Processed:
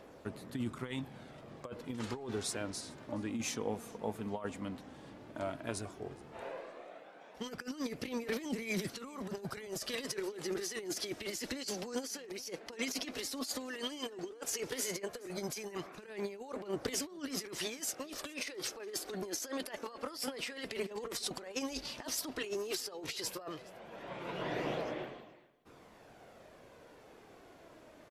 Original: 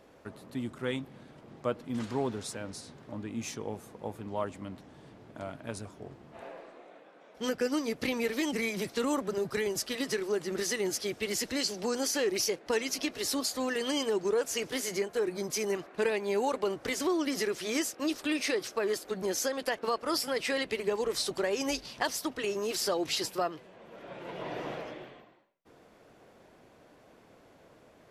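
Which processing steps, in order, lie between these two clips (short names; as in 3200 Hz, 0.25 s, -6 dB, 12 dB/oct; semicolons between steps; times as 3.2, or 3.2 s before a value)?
low shelf 350 Hz -2 dB; negative-ratio compressor -36 dBFS, ratio -0.5; phaser 0.12 Hz, delay 4.6 ms, feedback 31%; echo 0.42 s -23.5 dB; gain -3 dB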